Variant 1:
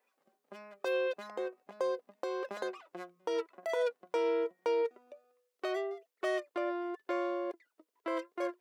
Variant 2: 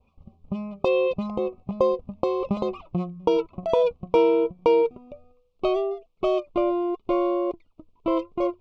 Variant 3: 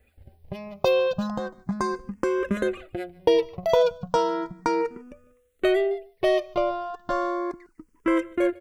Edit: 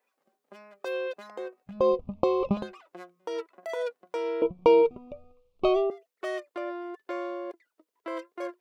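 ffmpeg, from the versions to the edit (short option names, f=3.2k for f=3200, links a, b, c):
-filter_complex "[1:a]asplit=2[a][b];[0:a]asplit=3[c][d][e];[c]atrim=end=1.89[f];[a]atrim=start=1.65:end=2.74[g];[d]atrim=start=2.5:end=4.422[h];[b]atrim=start=4.418:end=5.902[i];[e]atrim=start=5.898[j];[f][g]acrossfade=d=0.24:c1=tri:c2=tri[k];[k][h]acrossfade=d=0.24:c1=tri:c2=tri[l];[l][i]acrossfade=d=0.004:c1=hsin:c2=hsin[m];[m][j]acrossfade=d=0.004:c1=hsin:c2=hsin"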